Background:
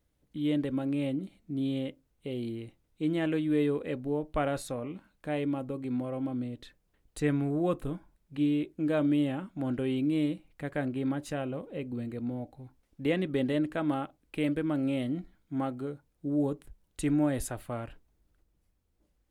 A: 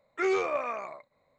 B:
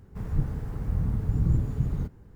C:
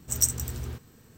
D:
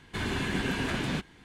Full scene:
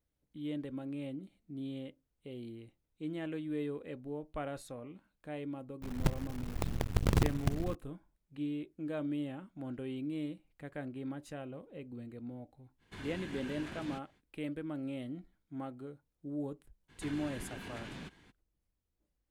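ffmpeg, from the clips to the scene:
ffmpeg -i bed.wav -i cue0.wav -i cue1.wav -i cue2.wav -i cue3.wav -filter_complex "[4:a]asplit=2[link_01][link_02];[0:a]volume=-10dB[link_03];[2:a]acrusher=bits=4:dc=4:mix=0:aa=0.000001[link_04];[link_02]acompressor=threshold=-35dB:ratio=6:attack=3.2:release=140:knee=1:detection=peak[link_05];[link_04]atrim=end=2.35,asetpts=PTS-STARTPTS,volume=-6dB,afade=type=in:duration=0.004:curve=hsin,afade=type=out:start_time=2.346:duration=0.004:curve=hsin,adelay=5670[link_06];[link_01]atrim=end=1.44,asetpts=PTS-STARTPTS,volume=-15dB,afade=type=in:duration=0.05,afade=type=out:start_time=1.39:duration=0.05,adelay=12780[link_07];[link_05]atrim=end=1.44,asetpts=PTS-STARTPTS,volume=-7dB,afade=type=in:duration=0.02,afade=type=out:start_time=1.42:duration=0.02,adelay=16880[link_08];[link_03][link_06][link_07][link_08]amix=inputs=4:normalize=0" out.wav

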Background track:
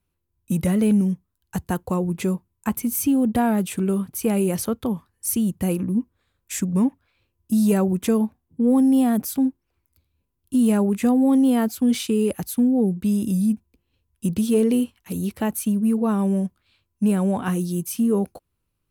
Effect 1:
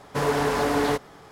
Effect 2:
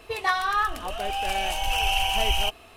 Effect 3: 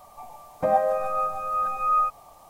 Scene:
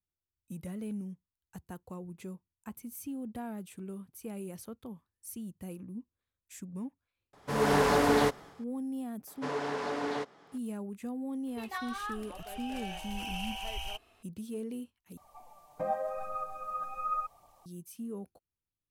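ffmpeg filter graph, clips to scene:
ffmpeg -i bed.wav -i cue0.wav -i cue1.wav -i cue2.wav -filter_complex "[1:a]asplit=2[link_01][link_02];[0:a]volume=-20dB[link_03];[link_01]dynaudnorm=framelen=110:gausssize=5:maxgain=13dB[link_04];[link_02]highpass=180,lowpass=6100[link_05];[3:a]flanger=delay=0.1:depth=7:regen=46:speed=0.88:shape=triangular[link_06];[link_03]asplit=2[link_07][link_08];[link_07]atrim=end=15.174[link_09];[link_06]atrim=end=2.49,asetpts=PTS-STARTPTS,volume=-7.5dB[link_10];[link_08]atrim=start=17.656[link_11];[link_04]atrim=end=1.31,asetpts=PTS-STARTPTS,volume=-11.5dB,afade=type=in:duration=0.004:curve=hsin,afade=type=out:start_time=1.306:duration=0.004:curve=hsin,adelay=7330[link_12];[link_05]atrim=end=1.31,asetpts=PTS-STARTPTS,volume=-10.5dB,afade=type=in:duration=0.004:curve=hsin,afade=type=out:start_time=1.306:duration=0.004:curve=hsin,adelay=9270[link_13];[2:a]atrim=end=2.76,asetpts=PTS-STARTPTS,volume=-15dB,afade=type=in:duration=0.004:curve=hsin,afade=type=out:start_time=2.756:duration=0.004:curve=hsin,adelay=11470[link_14];[link_09][link_10]acrossfade=duration=0.004:curve1=hsin:curve2=hsin[link_15];[link_15][link_11]acrossfade=duration=0.004:curve1=hsin:curve2=hsin[link_16];[link_16][link_12][link_13][link_14]amix=inputs=4:normalize=0" out.wav

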